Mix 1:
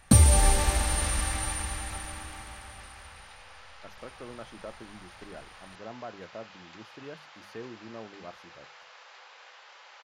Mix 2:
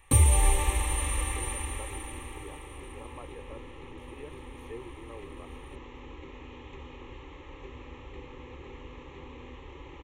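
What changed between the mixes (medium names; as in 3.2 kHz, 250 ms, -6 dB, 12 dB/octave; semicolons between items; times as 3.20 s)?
speech: entry -2.85 s; second sound: remove Bessel high-pass 1 kHz, order 8; master: add static phaser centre 1 kHz, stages 8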